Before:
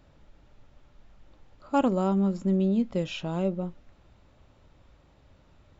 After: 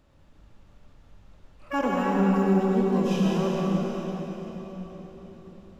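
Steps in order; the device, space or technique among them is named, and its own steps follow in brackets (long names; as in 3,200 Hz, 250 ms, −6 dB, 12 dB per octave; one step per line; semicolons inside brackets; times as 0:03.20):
shimmer-style reverb (pitch-shifted copies added +12 semitones −6 dB; convolution reverb RT60 4.6 s, pre-delay 72 ms, DRR −4 dB)
level −4.5 dB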